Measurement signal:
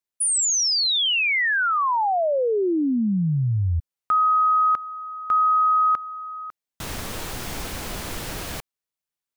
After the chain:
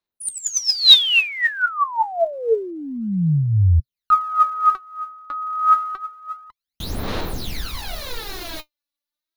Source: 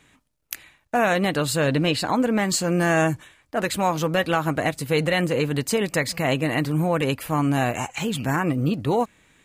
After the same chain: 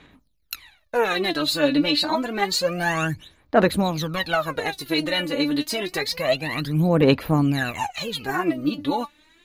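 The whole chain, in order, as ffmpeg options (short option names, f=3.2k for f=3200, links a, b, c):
-af "equalizer=f=125:t=o:w=0.33:g=-8,equalizer=f=4k:t=o:w=0.33:g=10,equalizer=f=8k:t=o:w=0.33:g=-11,aphaser=in_gain=1:out_gain=1:delay=3.5:decay=0.79:speed=0.28:type=sinusoidal,volume=-4.5dB"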